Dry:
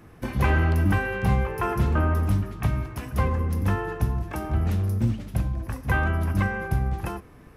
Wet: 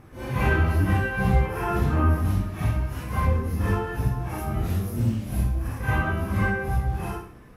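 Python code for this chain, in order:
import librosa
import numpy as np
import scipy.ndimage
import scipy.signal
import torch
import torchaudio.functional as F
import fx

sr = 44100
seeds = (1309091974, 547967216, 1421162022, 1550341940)

y = fx.phase_scramble(x, sr, seeds[0], window_ms=200)
y = fx.high_shelf(y, sr, hz=8400.0, db=8.0, at=(4.38, 5.68))
y = fx.echo_feedback(y, sr, ms=64, feedback_pct=44, wet_db=-11)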